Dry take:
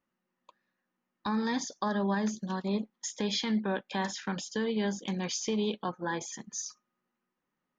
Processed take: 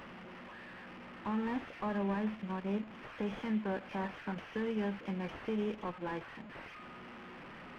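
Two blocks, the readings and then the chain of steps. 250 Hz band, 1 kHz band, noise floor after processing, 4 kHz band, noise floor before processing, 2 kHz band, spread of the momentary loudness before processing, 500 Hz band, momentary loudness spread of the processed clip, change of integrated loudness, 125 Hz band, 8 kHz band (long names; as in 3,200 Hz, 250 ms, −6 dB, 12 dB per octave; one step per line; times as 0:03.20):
−4.5 dB, −5.0 dB, −50 dBFS, −14.5 dB, −85 dBFS, −5.0 dB, 8 LU, −4.5 dB, 14 LU, −5.5 dB, −4.5 dB, can't be measured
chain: linear delta modulator 16 kbit/s, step −39 dBFS
windowed peak hold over 3 samples
level −4.5 dB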